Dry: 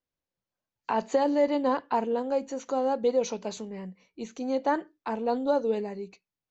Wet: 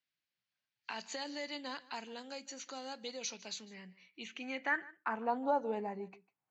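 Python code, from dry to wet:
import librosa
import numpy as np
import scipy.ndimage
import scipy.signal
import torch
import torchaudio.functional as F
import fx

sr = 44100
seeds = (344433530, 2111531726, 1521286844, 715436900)

y = fx.env_lowpass(x, sr, base_hz=2500.0, full_db=-25.5)
y = fx.graphic_eq_10(y, sr, hz=(125, 500, 1000, 4000), db=(9, -9, -9, -11))
y = fx.filter_sweep_bandpass(y, sr, from_hz=4300.0, to_hz=880.0, start_s=4.0, end_s=5.41, q=3.0)
y = y + 10.0 ** (-22.0 / 20.0) * np.pad(y, (int(150 * sr / 1000.0), 0))[:len(y)]
y = fx.band_squash(y, sr, depth_pct=40)
y = F.gain(torch.from_numpy(y), 14.0).numpy()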